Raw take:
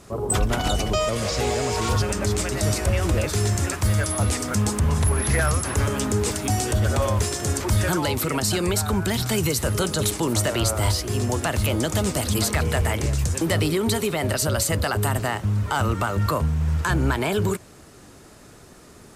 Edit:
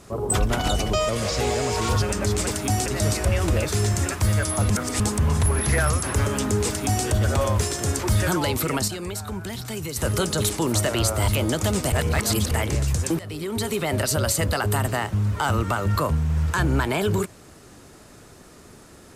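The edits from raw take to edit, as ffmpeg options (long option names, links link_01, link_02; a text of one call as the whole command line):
ffmpeg -i in.wav -filter_complex "[0:a]asplit=11[link_01][link_02][link_03][link_04][link_05][link_06][link_07][link_08][link_09][link_10][link_11];[link_01]atrim=end=2.472[link_12];[link_02]atrim=start=6.268:end=6.662[link_13];[link_03]atrim=start=2.468:end=4.312[link_14];[link_04]atrim=start=4.308:end=4.612,asetpts=PTS-STARTPTS,areverse[link_15];[link_05]atrim=start=4.608:end=8.49,asetpts=PTS-STARTPTS,afade=type=out:start_time=3.702:duration=0.18:curve=log:silence=0.375837[link_16];[link_06]atrim=start=8.49:end=9.57,asetpts=PTS-STARTPTS,volume=-8.5dB[link_17];[link_07]atrim=start=9.57:end=10.892,asetpts=PTS-STARTPTS,afade=type=in:duration=0.18:curve=log:silence=0.375837[link_18];[link_08]atrim=start=11.588:end=12.232[link_19];[link_09]atrim=start=12.228:end=12.822,asetpts=PTS-STARTPTS,areverse[link_20];[link_10]atrim=start=12.818:end=13.5,asetpts=PTS-STARTPTS,afade=type=out:start_time=0.678:duration=0.004:curve=hsin:silence=0.0944061[link_21];[link_11]atrim=start=13.5,asetpts=PTS-STARTPTS,afade=type=in:duration=0.68:silence=0.0944061[link_22];[link_12][link_13]acrossfade=duration=0.004:curve1=hsin:curve2=hsin[link_23];[link_23][link_14]acrossfade=duration=0.004:curve1=hsin:curve2=hsin[link_24];[link_24][link_15]acrossfade=duration=0.004:curve1=hsin:curve2=hsin[link_25];[link_16][link_17][link_18]concat=n=3:v=0:a=1[link_26];[link_25][link_26]acrossfade=duration=0.004:curve1=hsin:curve2=hsin[link_27];[link_27][link_19]acrossfade=duration=0.004:curve1=hsin:curve2=hsin[link_28];[link_28][link_20]acrossfade=duration=0.004:curve1=hsin:curve2=hsin[link_29];[link_21][link_22]concat=n=2:v=0:a=1[link_30];[link_29][link_30]acrossfade=duration=0.004:curve1=hsin:curve2=hsin" out.wav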